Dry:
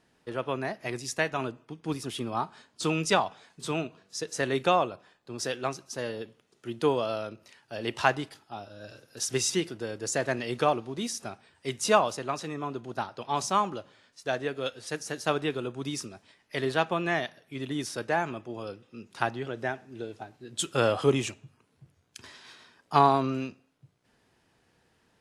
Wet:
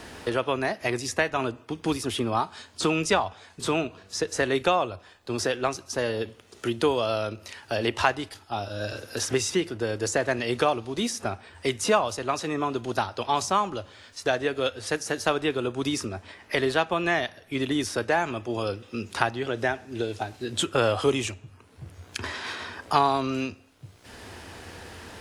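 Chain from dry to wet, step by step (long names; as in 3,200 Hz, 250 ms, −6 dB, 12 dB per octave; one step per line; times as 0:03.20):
low shelf with overshoot 110 Hz +7.5 dB, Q 3
multiband upward and downward compressor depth 70%
level +4.5 dB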